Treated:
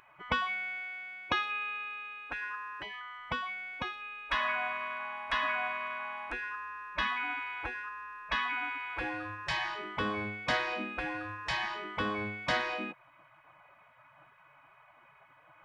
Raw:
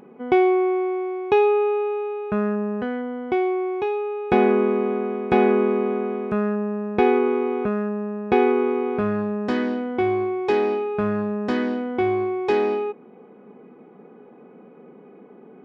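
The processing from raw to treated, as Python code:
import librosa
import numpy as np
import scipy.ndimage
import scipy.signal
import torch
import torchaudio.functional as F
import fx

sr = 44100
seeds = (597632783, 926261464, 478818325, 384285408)

y = fx.spec_gate(x, sr, threshold_db=-20, keep='weak')
y = fx.low_shelf(y, sr, hz=120.0, db=-8.5, at=(0.84, 3.19))
y = y * 10.0 ** (4.0 / 20.0)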